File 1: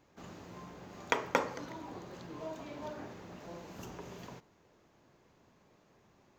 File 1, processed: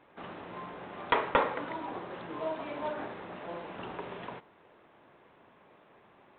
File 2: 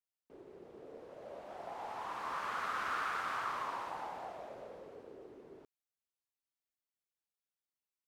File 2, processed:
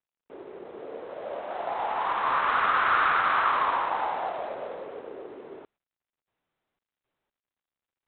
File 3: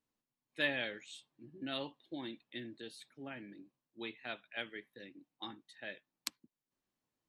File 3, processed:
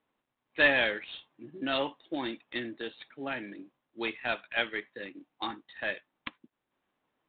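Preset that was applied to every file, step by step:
overdrive pedal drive 17 dB, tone 2 kHz, clips at -11 dBFS; IMA ADPCM 32 kbps 8 kHz; peak normalisation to -12 dBFS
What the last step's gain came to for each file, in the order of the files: 0.0 dB, +5.5 dB, +4.5 dB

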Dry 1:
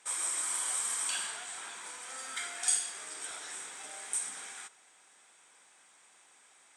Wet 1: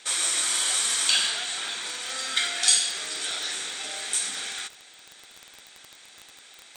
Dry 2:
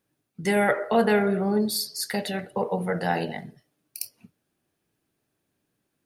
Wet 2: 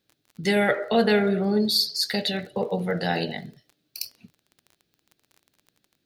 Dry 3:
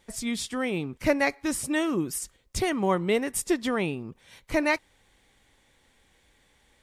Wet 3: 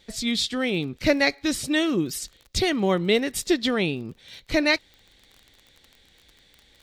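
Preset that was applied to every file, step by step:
fifteen-band graphic EQ 1 kHz -8 dB, 4 kHz +11 dB, 10 kHz -8 dB; crackle 24 per s -40 dBFS; normalise loudness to -24 LUFS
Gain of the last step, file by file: +11.0 dB, +1.5 dB, +3.5 dB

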